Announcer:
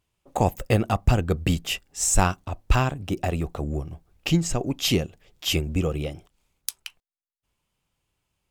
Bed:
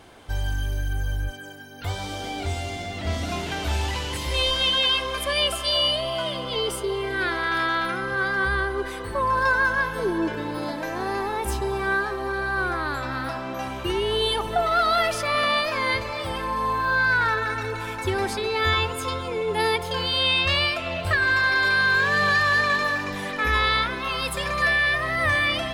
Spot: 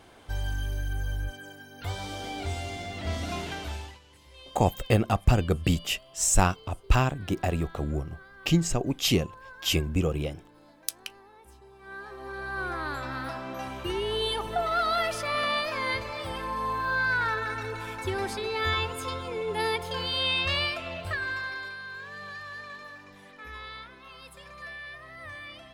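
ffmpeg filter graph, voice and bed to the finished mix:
-filter_complex "[0:a]adelay=4200,volume=0.841[s0];[1:a]volume=6.68,afade=t=out:st=3.41:d=0.58:silence=0.0794328,afade=t=in:st=11.79:d=1.07:silence=0.0891251,afade=t=out:st=20.61:d=1.16:silence=0.177828[s1];[s0][s1]amix=inputs=2:normalize=0"

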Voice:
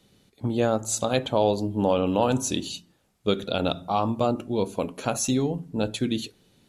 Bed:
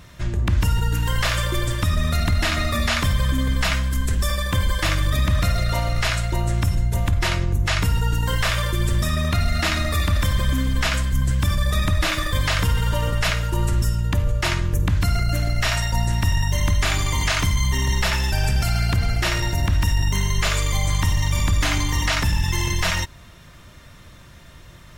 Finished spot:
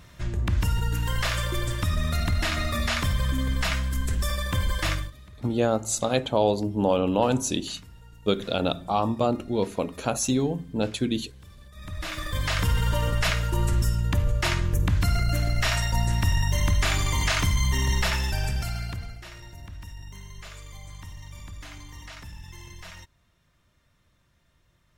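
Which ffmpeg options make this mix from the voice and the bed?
-filter_complex "[0:a]adelay=5000,volume=1[s0];[1:a]volume=10.6,afade=t=out:st=4.91:d=0.21:silence=0.0668344,afade=t=in:st=11.74:d=1.02:silence=0.0530884,afade=t=out:st=17.96:d=1.24:silence=0.11885[s1];[s0][s1]amix=inputs=2:normalize=0"

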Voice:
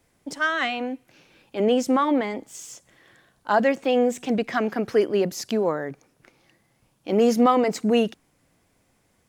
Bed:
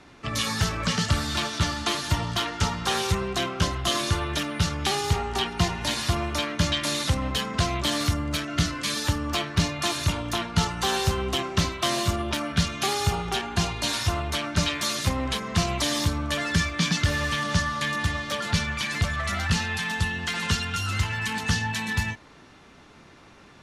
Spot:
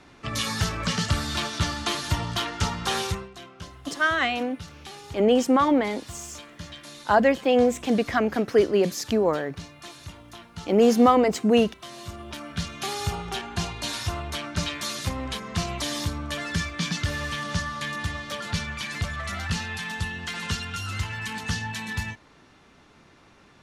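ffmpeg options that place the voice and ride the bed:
-filter_complex "[0:a]adelay=3600,volume=1.12[s0];[1:a]volume=3.76,afade=t=out:st=3.01:d=0.29:silence=0.16788,afade=t=in:st=11.92:d=1.12:silence=0.237137[s1];[s0][s1]amix=inputs=2:normalize=0"

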